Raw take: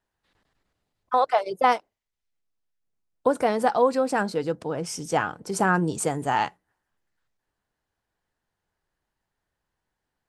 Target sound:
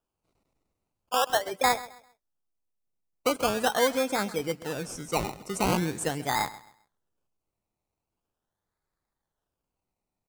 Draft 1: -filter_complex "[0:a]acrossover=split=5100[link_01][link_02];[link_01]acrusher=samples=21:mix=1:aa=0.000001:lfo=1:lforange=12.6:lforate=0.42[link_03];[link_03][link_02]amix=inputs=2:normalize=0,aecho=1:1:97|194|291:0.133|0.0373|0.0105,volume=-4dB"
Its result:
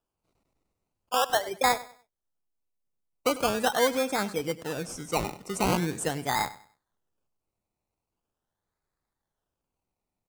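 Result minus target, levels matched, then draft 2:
echo 35 ms early
-filter_complex "[0:a]acrossover=split=5100[link_01][link_02];[link_01]acrusher=samples=21:mix=1:aa=0.000001:lfo=1:lforange=12.6:lforate=0.42[link_03];[link_03][link_02]amix=inputs=2:normalize=0,aecho=1:1:132|264|396:0.133|0.0373|0.0105,volume=-4dB"

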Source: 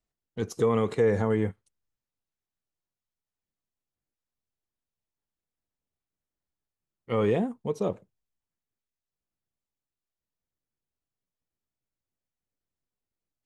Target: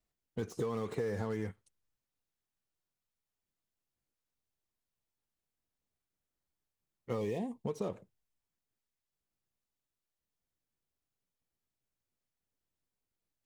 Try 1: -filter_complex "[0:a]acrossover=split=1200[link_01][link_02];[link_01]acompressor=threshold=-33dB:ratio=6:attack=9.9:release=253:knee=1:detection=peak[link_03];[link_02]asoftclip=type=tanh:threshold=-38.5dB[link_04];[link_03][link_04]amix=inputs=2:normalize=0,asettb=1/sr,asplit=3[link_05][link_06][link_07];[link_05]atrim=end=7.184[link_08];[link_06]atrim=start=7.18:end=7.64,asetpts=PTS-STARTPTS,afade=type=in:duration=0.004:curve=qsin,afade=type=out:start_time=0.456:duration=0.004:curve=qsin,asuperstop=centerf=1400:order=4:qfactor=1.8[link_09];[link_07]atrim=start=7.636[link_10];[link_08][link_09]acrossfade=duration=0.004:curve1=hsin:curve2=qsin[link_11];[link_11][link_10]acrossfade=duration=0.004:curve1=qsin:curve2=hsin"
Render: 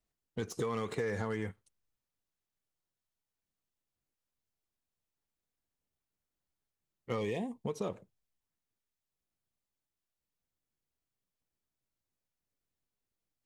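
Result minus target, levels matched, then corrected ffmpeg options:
soft clipping: distortion −8 dB
-filter_complex "[0:a]acrossover=split=1200[link_01][link_02];[link_01]acompressor=threshold=-33dB:ratio=6:attack=9.9:release=253:knee=1:detection=peak[link_03];[link_02]asoftclip=type=tanh:threshold=-50dB[link_04];[link_03][link_04]amix=inputs=2:normalize=0,asettb=1/sr,asplit=3[link_05][link_06][link_07];[link_05]atrim=end=7.184[link_08];[link_06]atrim=start=7.18:end=7.64,asetpts=PTS-STARTPTS,afade=type=in:duration=0.004:curve=qsin,afade=type=out:start_time=0.456:duration=0.004:curve=qsin,asuperstop=centerf=1400:order=4:qfactor=1.8[link_09];[link_07]atrim=start=7.636[link_10];[link_08][link_09]acrossfade=duration=0.004:curve1=hsin:curve2=qsin[link_11];[link_11][link_10]acrossfade=duration=0.004:curve1=qsin:curve2=hsin"

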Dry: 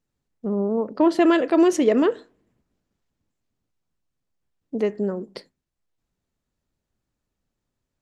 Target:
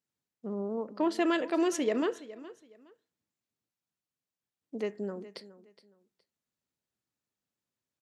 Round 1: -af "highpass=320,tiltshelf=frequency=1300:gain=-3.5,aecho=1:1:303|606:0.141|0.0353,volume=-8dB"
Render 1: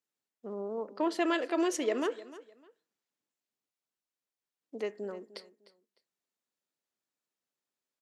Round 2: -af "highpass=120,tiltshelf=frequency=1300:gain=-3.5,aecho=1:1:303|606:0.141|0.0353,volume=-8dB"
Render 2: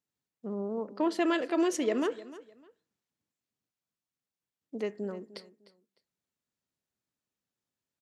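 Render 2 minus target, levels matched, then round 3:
echo 114 ms early
-af "highpass=120,tiltshelf=frequency=1300:gain=-3.5,aecho=1:1:417|834:0.141|0.0353,volume=-8dB"

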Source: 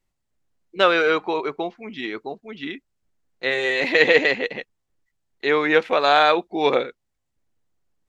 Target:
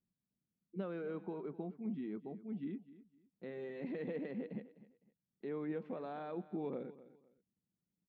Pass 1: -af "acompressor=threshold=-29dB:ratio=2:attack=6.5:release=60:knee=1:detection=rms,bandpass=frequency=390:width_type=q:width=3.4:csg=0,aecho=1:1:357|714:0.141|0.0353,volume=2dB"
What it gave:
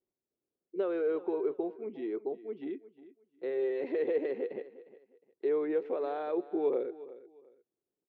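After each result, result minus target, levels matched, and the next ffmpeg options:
echo 103 ms late; 250 Hz band −5.5 dB
-af "acompressor=threshold=-29dB:ratio=2:attack=6.5:release=60:knee=1:detection=rms,bandpass=frequency=390:width_type=q:width=3.4:csg=0,aecho=1:1:254|508:0.141|0.0353,volume=2dB"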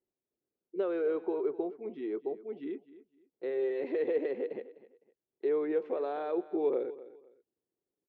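250 Hz band −5.5 dB
-af "acompressor=threshold=-29dB:ratio=2:attack=6.5:release=60:knee=1:detection=rms,bandpass=frequency=190:width_type=q:width=3.4:csg=0,aecho=1:1:254|508:0.141|0.0353,volume=2dB"

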